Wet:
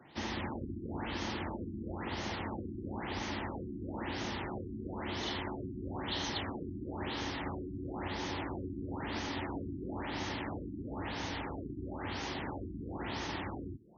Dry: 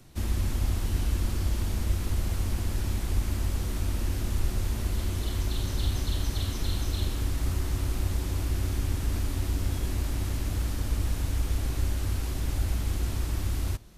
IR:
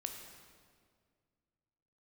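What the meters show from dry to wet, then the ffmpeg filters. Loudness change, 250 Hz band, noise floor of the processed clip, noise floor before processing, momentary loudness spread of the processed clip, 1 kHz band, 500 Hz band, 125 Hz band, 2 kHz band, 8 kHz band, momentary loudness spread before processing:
-8.5 dB, -1.0 dB, -44 dBFS, -33 dBFS, 4 LU, +3.5 dB, +0.5 dB, -14.5 dB, +1.0 dB, -13.5 dB, 2 LU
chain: -af "highpass=220,equalizer=f=870:t=q:w=4:g=8,equalizer=f=1.9k:t=q:w=4:g=6,equalizer=f=3.2k:t=q:w=4:g=4,lowpass=f=8.6k:w=0.5412,lowpass=f=8.6k:w=1.3066,afftfilt=real='re*lt(b*sr/1024,370*pow(6800/370,0.5+0.5*sin(2*PI*1*pts/sr)))':imag='im*lt(b*sr/1024,370*pow(6800/370,0.5+0.5*sin(2*PI*1*pts/sr)))':win_size=1024:overlap=0.75,volume=1dB"

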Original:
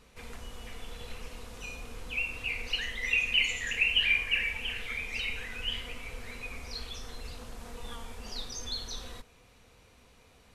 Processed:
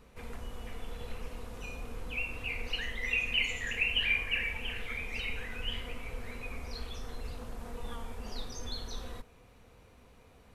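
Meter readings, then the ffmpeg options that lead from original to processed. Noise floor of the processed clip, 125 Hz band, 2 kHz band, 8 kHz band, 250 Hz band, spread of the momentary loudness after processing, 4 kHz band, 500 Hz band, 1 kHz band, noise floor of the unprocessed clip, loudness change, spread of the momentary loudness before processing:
-59 dBFS, +2.5 dB, -3.0 dB, -6.0 dB, +2.5 dB, 16 LU, -4.5 dB, +2.0 dB, +0.5 dB, -60 dBFS, -4.5 dB, 20 LU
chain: -af "equalizer=f=5.5k:w=0.37:g=-9,volume=2.5dB"

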